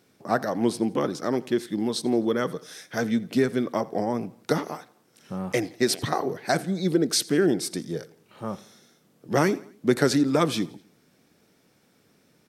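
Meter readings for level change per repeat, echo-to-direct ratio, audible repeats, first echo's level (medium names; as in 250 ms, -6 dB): -6.0 dB, -21.0 dB, 3, -22.0 dB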